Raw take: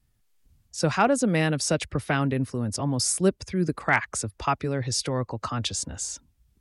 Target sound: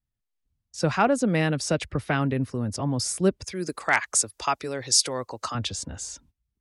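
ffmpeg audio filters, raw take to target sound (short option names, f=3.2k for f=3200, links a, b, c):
-filter_complex "[0:a]highshelf=f=7.2k:g=-7.5,agate=range=-16dB:threshold=-55dB:ratio=16:detection=peak,asettb=1/sr,asplit=3[a][b][c];[a]atrim=end=3.444[d];[b]atrim=start=3.44:end=5.55,asetpts=PTS-STARTPTS,afade=t=in:d=0.004:c=qsin,afade=t=out:st=2.106:d=0.004:c=qsin,bass=f=250:g=-13,treble=f=4k:g=14[e];[c]atrim=start=5.546[f];[d][e]acrossfade=d=0.004:c1=hsin:c2=qsin[g];[g][f]acrossfade=d=0.004:c1=qsin:c2=hsin"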